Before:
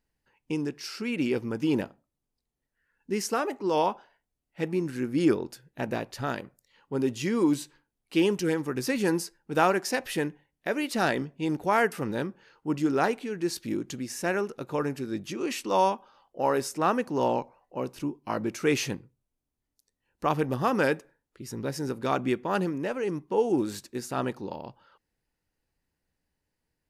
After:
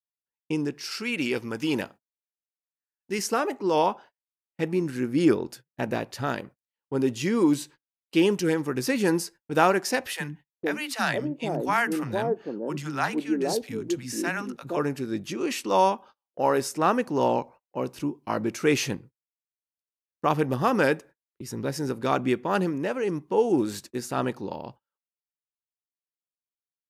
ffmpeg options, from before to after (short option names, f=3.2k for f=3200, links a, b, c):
-filter_complex "[0:a]asettb=1/sr,asplit=3[a][b][c];[a]atrim=end=0.914[d];[b]atrim=start=0.91:end=3.19,asetpts=PTS-STARTPTS,afade=t=in:d=0.004:c=qsin,afade=t=out:st=2.276:d=0.004:c=qsin,tiltshelf=f=870:g=-5[e];[c]atrim=start=3.186[f];[d][e]acrossfade=d=0.004:c1=hsin:c2=qsin[g];[g][f]acrossfade=d=0.004:c1=qsin:c2=hsin,asettb=1/sr,asplit=3[h][i][j];[h]atrim=end=10.134[k];[i]atrim=start=10.13:end=14.77,asetpts=PTS-STARTPTS,afade=t=in:d=0.004:c=qsin,afade=t=out:st=4.636:d=0.004:c=qsin,acrossover=split=230|700[l][m][n];[l]adelay=40[o];[m]adelay=470[p];[o][p][n]amix=inputs=3:normalize=0,atrim=end_sample=204624[q];[j]atrim=start=14.766[r];[k][q]acrossfade=d=0.004:c1=hsin:c2=qsin[s];[s][r]acrossfade=d=0.004:c1=qsin:c2=hsin,agate=range=-36dB:threshold=-47dB:ratio=16:detection=peak,highpass=50,volume=2.5dB"